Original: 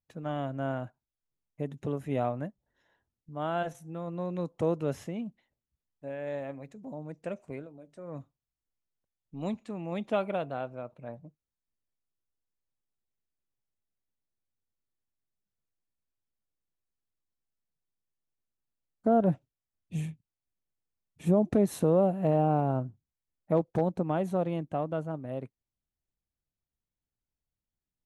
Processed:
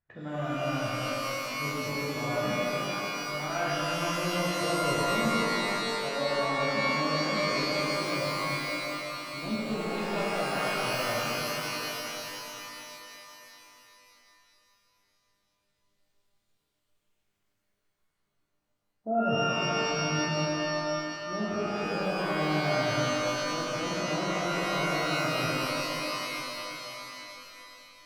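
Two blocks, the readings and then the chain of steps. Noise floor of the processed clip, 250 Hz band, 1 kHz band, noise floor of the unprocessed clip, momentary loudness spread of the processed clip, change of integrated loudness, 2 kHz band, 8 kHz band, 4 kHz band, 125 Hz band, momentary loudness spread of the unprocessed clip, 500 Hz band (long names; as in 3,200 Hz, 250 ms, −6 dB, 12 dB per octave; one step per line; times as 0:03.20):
−78 dBFS, 0.0 dB, +6.5 dB, below −85 dBFS, 11 LU, +1.5 dB, +18.0 dB, +16.5 dB, +23.0 dB, −1.0 dB, 18 LU, +1.0 dB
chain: reversed playback
downward compressor 10 to 1, threshold −40 dBFS, peak gain reduction 21 dB
reversed playback
auto-filter low-pass sine 0.14 Hz 670–4,100 Hz
reverb with rising layers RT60 3.5 s, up +12 semitones, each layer −2 dB, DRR −7.5 dB
level +3 dB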